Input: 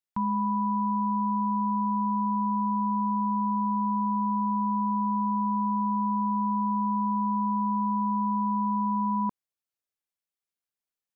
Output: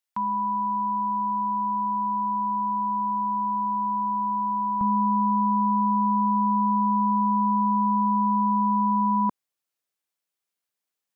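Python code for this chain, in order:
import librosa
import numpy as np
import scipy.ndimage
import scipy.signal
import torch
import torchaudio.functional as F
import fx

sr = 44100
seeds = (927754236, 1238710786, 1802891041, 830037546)

y = fx.highpass(x, sr, hz=fx.steps((0.0, 800.0), (4.81, 170.0)), slope=6)
y = F.gain(torch.from_numpy(y), 5.5).numpy()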